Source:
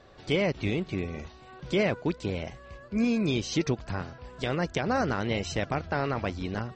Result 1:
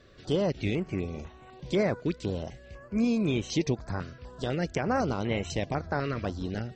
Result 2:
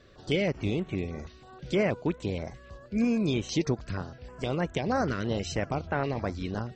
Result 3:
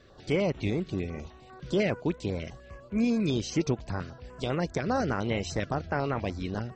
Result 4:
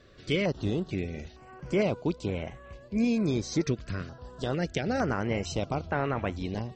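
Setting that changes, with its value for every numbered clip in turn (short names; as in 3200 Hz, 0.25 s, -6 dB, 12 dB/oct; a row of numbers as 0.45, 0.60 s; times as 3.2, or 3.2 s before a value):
stepped notch, rate: 4, 6.3, 10, 2.2 Hz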